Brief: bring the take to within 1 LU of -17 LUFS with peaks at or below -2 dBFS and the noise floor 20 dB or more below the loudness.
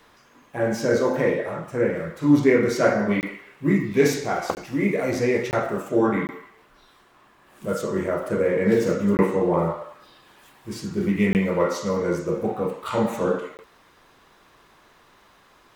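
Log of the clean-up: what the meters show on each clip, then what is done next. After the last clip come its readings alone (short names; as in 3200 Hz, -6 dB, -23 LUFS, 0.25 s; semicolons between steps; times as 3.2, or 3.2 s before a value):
dropouts 7; longest dropout 19 ms; loudness -23.0 LUFS; peak -4.5 dBFS; loudness target -17.0 LUFS
-> interpolate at 3.21/4.55/5.51/6.27/9.17/11.33/13.57, 19 ms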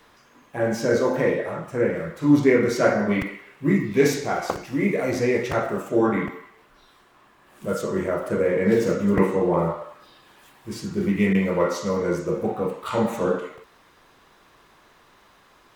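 dropouts 0; loudness -23.0 LUFS; peak -4.5 dBFS; loudness target -17.0 LUFS
-> gain +6 dB; limiter -2 dBFS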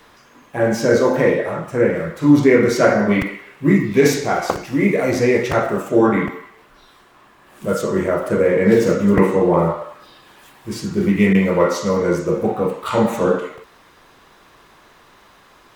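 loudness -17.0 LUFS; peak -2.0 dBFS; noise floor -50 dBFS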